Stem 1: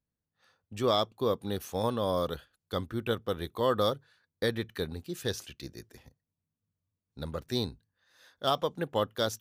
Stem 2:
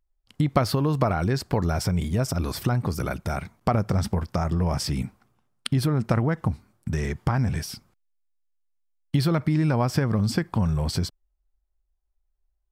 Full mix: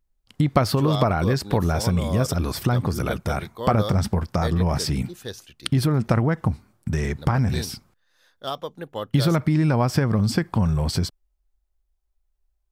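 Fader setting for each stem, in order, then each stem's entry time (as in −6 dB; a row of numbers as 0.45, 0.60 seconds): −2.0, +2.5 decibels; 0.00, 0.00 seconds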